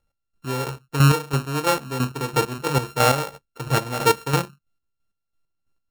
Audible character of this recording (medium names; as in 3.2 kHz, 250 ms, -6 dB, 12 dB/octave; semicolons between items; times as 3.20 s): a buzz of ramps at a fixed pitch in blocks of 32 samples; chopped level 3 Hz, depth 60%, duty 35%